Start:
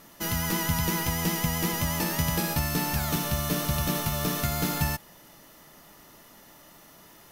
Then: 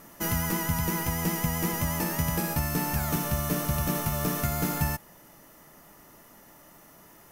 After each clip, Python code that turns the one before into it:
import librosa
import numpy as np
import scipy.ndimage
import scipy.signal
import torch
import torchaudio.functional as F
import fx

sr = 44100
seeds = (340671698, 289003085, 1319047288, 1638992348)

y = fx.peak_eq(x, sr, hz=3800.0, db=-8.5, octaves=1.0)
y = fx.rider(y, sr, range_db=10, speed_s=0.5)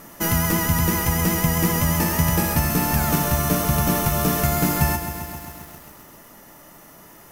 y = fx.echo_crushed(x, sr, ms=132, feedback_pct=80, bits=8, wet_db=-10)
y = y * 10.0 ** (7.0 / 20.0)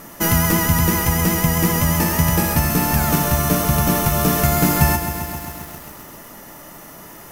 y = fx.rider(x, sr, range_db=4, speed_s=2.0)
y = y * 10.0 ** (3.0 / 20.0)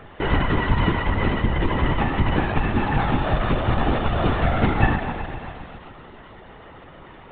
y = fx.lpc_vocoder(x, sr, seeds[0], excitation='whisper', order=16)
y = y * 10.0 ** (-2.0 / 20.0)